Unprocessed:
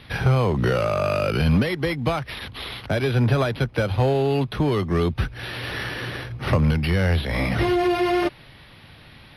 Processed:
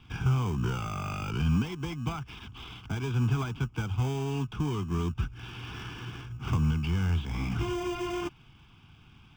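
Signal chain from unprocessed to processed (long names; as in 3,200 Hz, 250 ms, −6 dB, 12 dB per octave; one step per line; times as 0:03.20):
in parallel at −7 dB: decimation without filtering 32×
on the sum: phaser with its sweep stopped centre 2,800 Hz, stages 8
level −9 dB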